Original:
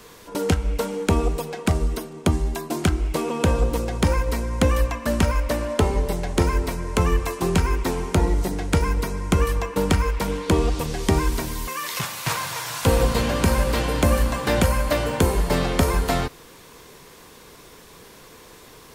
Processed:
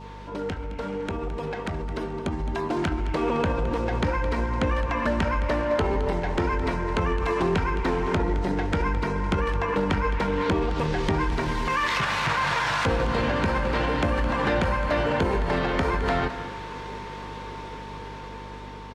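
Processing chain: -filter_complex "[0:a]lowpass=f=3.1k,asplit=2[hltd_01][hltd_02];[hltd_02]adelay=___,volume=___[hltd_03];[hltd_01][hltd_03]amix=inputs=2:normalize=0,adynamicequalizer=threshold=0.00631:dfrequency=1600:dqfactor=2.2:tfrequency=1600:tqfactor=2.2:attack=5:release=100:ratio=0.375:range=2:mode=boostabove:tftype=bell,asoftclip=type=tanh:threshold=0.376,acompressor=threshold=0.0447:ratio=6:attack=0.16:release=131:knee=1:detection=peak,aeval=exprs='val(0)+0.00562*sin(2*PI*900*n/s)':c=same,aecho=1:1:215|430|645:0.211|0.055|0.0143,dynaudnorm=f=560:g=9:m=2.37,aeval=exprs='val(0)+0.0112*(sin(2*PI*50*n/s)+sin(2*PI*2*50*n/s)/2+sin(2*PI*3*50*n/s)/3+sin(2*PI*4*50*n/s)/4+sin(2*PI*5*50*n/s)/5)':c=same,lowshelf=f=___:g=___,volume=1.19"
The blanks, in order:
20, 0.2, 88, -6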